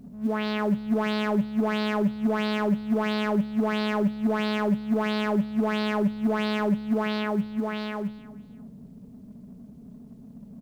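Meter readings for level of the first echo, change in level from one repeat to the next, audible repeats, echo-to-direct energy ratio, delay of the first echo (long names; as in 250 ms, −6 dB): −19.0 dB, −11.5 dB, 2, −18.5 dB, 326 ms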